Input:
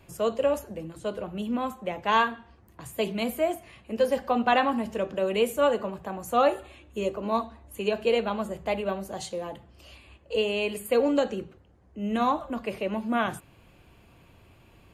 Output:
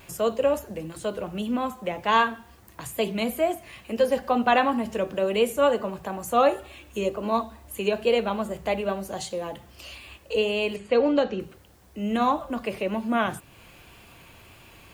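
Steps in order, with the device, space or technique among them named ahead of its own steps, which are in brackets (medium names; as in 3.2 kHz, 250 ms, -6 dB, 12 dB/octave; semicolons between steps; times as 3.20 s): noise-reduction cassette on a plain deck (tape noise reduction on one side only encoder only; wow and flutter 28 cents; white noise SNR 37 dB); 10.76–11.40 s: low-pass 5.3 kHz 24 dB/octave; trim +2 dB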